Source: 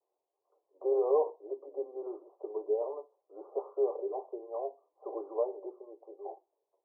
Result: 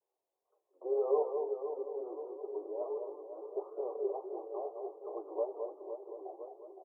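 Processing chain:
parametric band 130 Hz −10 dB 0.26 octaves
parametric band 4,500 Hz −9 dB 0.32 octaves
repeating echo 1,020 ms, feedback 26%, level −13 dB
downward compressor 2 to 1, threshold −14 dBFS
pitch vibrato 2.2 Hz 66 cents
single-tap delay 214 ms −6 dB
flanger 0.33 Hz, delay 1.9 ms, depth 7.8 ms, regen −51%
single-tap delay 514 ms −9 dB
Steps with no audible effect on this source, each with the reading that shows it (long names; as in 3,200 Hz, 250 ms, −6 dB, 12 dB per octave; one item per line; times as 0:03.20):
parametric band 130 Hz: nothing at its input below 300 Hz
parametric band 4,500 Hz: nothing at its input above 1,100 Hz
downward compressor, threshold −14 dBFS: peak of its input −17.0 dBFS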